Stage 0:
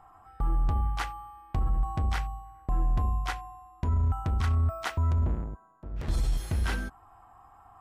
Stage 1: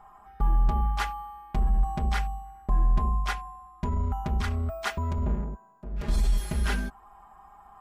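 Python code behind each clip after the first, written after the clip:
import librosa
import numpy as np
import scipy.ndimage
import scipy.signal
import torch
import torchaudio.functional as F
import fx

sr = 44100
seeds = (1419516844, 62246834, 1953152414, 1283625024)

y = x + 0.97 * np.pad(x, (int(4.9 * sr / 1000.0), 0))[:len(x)]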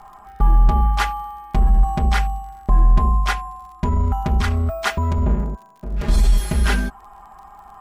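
y = fx.dmg_crackle(x, sr, seeds[0], per_s=48.0, level_db=-49.0)
y = F.gain(torch.from_numpy(y), 9.0).numpy()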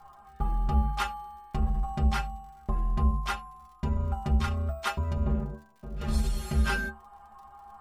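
y = fx.stiff_resonator(x, sr, f0_hz=70.0, decay_s=0.31, stiffness=0.008)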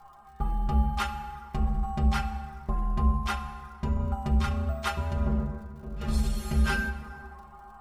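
y = fx.rev_plate(x, sr, seeds[1], rt60_s=2.7, hf_ratio=0.5, predelay_ms=0, drr_db=9.0)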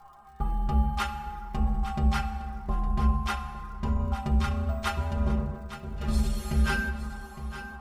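y = fx.echo_feedback(x, sr, ms=861, feedback_pct=25, wet_db=-12.5)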